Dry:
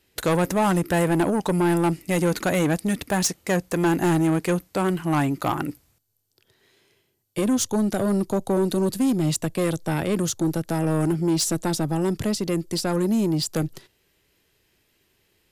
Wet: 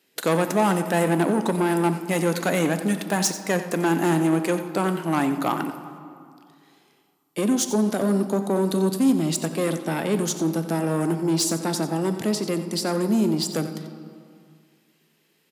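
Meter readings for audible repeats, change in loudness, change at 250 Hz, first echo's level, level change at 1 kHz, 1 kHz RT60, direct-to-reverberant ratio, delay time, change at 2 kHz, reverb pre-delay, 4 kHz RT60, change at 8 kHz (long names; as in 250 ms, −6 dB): 1, 0.0 dB, 0.0 dB, −13.0 dB, +1.0 dB, 2.3 s, 7.5 dB, 90 ms, +0.5 dB, 4 ms, 1.4 s, +0.5 dB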